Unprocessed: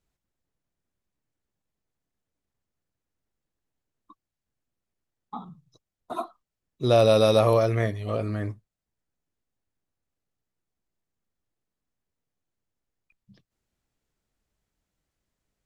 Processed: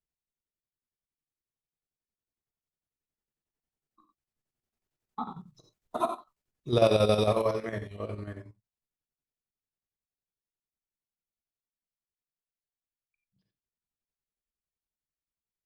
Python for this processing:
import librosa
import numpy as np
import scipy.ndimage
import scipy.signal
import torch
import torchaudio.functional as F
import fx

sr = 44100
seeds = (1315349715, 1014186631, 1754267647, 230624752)

y = fx.doppler_pass(x, sr, speed_mps=10, closest_m=5.5, pass_at_s=5.73)
y = fx.rev_gated(y, sr, seeds[0], gate_ms=130, shape='flat', drr_db=4.0)
y = fx.chopper(y, sr, hz=11.0, depth_pct=60, duty_pct=60)
y = F.gain(torch.from_numpy(y), 4.5).numpy()